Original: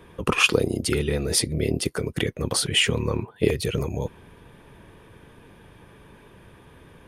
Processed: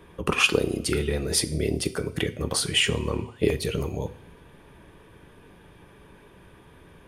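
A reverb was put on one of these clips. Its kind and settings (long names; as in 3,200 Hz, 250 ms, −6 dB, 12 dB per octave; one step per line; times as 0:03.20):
coupled-rooms reverb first 0.43 s, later 1.8 s, from −18 dB, DRR 10 dB
level −2 dB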